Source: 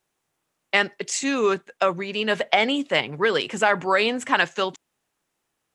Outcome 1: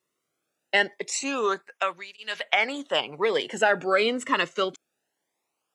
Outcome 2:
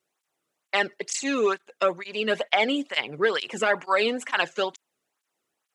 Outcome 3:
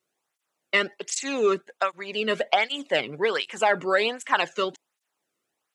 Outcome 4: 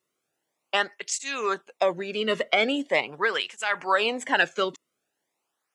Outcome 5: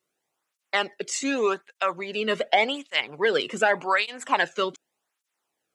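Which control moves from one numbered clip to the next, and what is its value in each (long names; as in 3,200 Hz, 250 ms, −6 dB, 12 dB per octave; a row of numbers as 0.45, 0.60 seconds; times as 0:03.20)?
through-zero flanger with one copy inverted, nulls at: 0.23, 2.2, 1.3, 0.42, 0.86 Hertz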